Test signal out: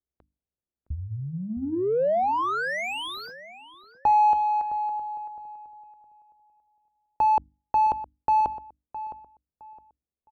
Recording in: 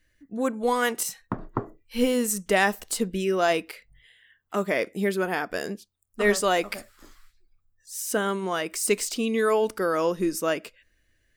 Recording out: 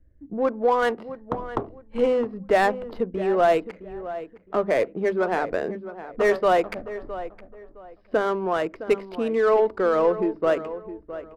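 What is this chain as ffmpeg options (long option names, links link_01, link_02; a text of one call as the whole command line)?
ffmpeg -i in.wav -filter_complex "[0:a]bandreject=frequency=50:width_type=h:width=6,bandreject=frequency=100:width_type=h:width=6,bandreject=frequency=150:width_type=h:width=6,bandreject=frequency=200:width_type=h:width=6,bandreject=frequency=250:width_type=h:width=6,bandreject=frequency=300:width_type=h:width=6,aresample=11025,aresample=44100,equalizer=frequency=66:width=5.2:gain=12.5,acrossover=split=440|1100[link_01][link_02][link_03];[link_01]acompressor=threshold=-43dB:ratio=6[link_04];[link_04][link_02][link_03]amix=inputs=3:normalize=0,asoftclip=type=tanh:threshold=-15dB,adynamicsmooth=sensitivity=4.5:basefreq=830,tiltshelf=frequency=1300:gain=8.5,asplit=2[link_05][link_06];[link_06]adelay=663,lowpass=frequency=2000:poles=1,volume=-13dB,asplit=2[link_07][link_08];[link_08]adelay=663,lowpass=frequency=2000:poles=1,volume=0.27,asplit=2[link_09][link_10];[link_10]adelay=663,lowpass=frequency=2000:poles=1,volume=0.27[link_11];[link_05][link_07][link_09][link_11]amix=inputs=4:normalize=0,volume=2.5dB" out.wav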